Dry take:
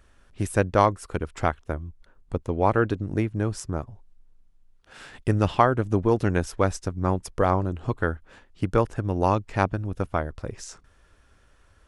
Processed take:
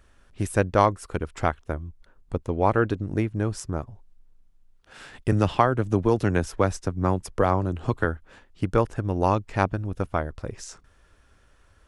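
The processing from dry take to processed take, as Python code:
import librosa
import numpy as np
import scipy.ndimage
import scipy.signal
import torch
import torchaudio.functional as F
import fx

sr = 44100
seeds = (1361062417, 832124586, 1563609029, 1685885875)

y = fx.band_squash(x, sr, depth_pct=40, at=(5.32, 8.05))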